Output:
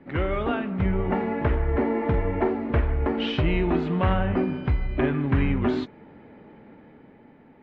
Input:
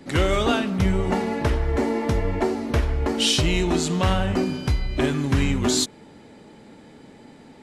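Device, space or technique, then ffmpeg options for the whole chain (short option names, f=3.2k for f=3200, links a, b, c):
action camera in a waterproof case: -filter_complex "[0:a]asettb=1/sr,asplit=3[a][b][c];[a]atrim=end=1.974[d];[b]atrim=start=1.97:end=2.49,asetpts=PTS-STARTPTS,afade=t=in:d=0.004:c=qsin,afade=t=out:st=0.516:d=0.004:c=qsin,asplit=2[e][f];[f]adelay=46,volume=-9.5dB[g];[e][g]amix=inputs=2:normalize=0,atrim=end_sample=22932[h];[c]atrim=start=2.486[i];[d][h]acrossfade=d=0.004:c1=hsin:c2=qsin[j];[j][i]acrossfade=d=0.004:c1=qsin:c2=hsin,lowpass=f=2.4k:w=0.5412,lowpass=f=2.4k:w=1.3066,dynaudnorm=f=110:g=17:m=4.5dB,volume=-5dB" -ar 32000 -c:a aac -b:a 64k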